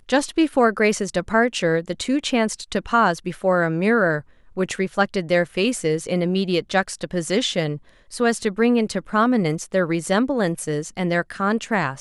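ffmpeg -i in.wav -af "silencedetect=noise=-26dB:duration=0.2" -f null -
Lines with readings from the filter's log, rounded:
silence_start: 4.19
silence_end: 4.57 | silence_duration: 0.38
silence_start: 7.76
silence_end: 8.13 | silence_duration: 0.37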